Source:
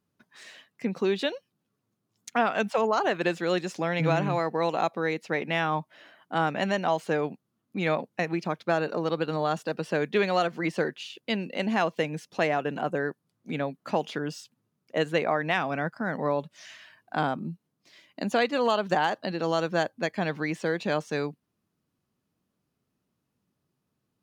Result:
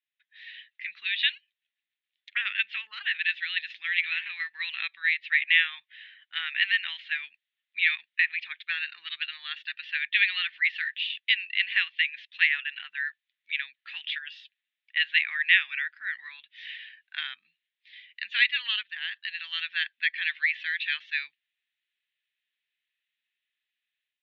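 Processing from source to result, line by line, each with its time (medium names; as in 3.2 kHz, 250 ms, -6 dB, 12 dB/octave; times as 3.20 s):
1.34–4.59 s: tremolo saw down 7.2 Hz, depth 50%
18.83–19.45 s: fade in, from -16.5 dB
whole clip: elliptic band-pass 1.8–3.7 kHz, stop band 60 dB; dynamic bell 2.4 kHz, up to +3 dB, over -47 dBFS, Q 0.92; level rider gain up to 8.5 dB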